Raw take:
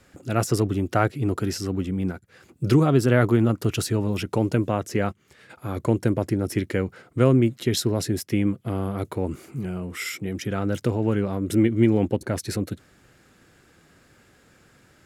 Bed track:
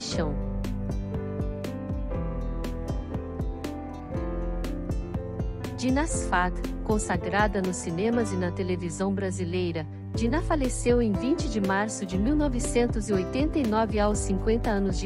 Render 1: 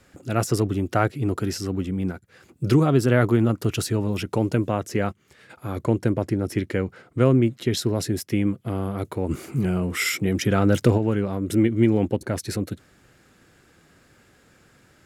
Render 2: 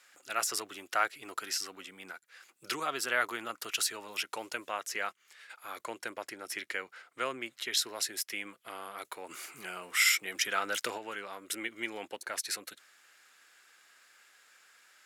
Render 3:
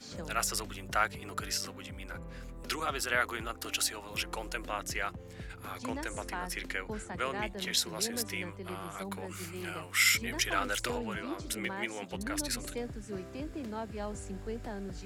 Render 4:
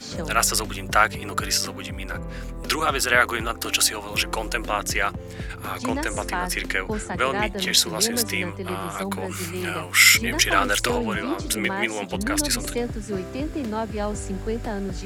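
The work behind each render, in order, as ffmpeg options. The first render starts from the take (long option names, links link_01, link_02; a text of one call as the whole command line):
ffmpeg -i in.wav -filter_complex "[0:a]asettb=1/sr,asplit=3[link_01][link_02][link_03];[link_01]atrim=end=5.834[link_04];[link_02]atrim=start=5.83:end=7.82,asetpts=PTS-STARTPTS,afade=type=in:duration=0.004:curve=qsin,afade=type=out:start_time=1.986:duration=0.004:curve=qsin,highshelf=frequency=6700:gain=-5.5[link_05];[link_03]atrim=start=7.816[link_06];[link_04][link_05]acrossfade=duration=0.004:curve1=hsin:curve2=qsin[link_07];[link_07][link_06]acrossfade=duration=0.004:curve1=qsin:curve2=hsin,asplit=3[link_08][link_09][link_10];[link_08]afade=type=out:start_time=9.29:duration=0.02[link_11];[link_09]acontrast=78,afade=type=in:start_time=9.29:duration=0.02,afade=type=out:start_time=10.97:duration=0.02[link_12];[link_10]afade=type=in:start_time=10.97:duration=0.02[link_13];[link_11][link_12][link_13]amix=inputs=3:normalize=0" out.wav
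ffmpeg -i in.wav -af "highpass=1300" out.wav
ffmpeg -i in.wav -i bed.wav -filter_complex "[1:a]volume=-14.5dB[link_01];[0:a][link_01]amix=inputs=2:normalize=0" out.wav
ffmpeg -i in.wav -af "volume=11.5dB,alimiter=limit=-2dB:level=0:latency=1" out.wav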